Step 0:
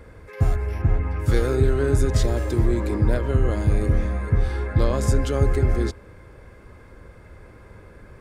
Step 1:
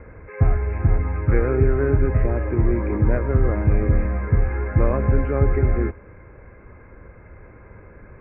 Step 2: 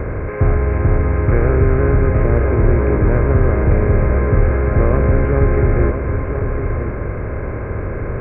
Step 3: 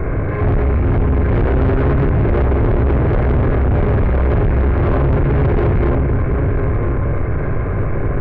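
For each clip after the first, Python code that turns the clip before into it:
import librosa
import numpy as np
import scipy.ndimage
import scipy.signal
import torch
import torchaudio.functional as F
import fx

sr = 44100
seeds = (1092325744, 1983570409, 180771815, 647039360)

y1 = scipy.signal.sosfilt(scipy.signal.butter(16, 2500.0, 'lowpass', fs=sr, output='sos'), x)
y1 = fx.rider(y1, sr, range_db=10, speed_s=2.0)
y1 = y1 * librosa.db_to_amplitude(1.5)
y2 = fx.bin_compress(y1, sr, power=0.4)
y2 = y2 + 10.0 ** (-7.5 / 20.0) * np.pad(y2, (int(1005 * sr / 1000.0), 0))[:len(y2)]
y3 = fx.room_shoebox(y2, sr, seeds[0], volume_m3=720.0, walls='furnished', distance_m=3.4)
y3 = 10.0 ** (-11.5 / 20.0) * np.tanh(y3 / 10.0 ** (-11.5 / 20.0))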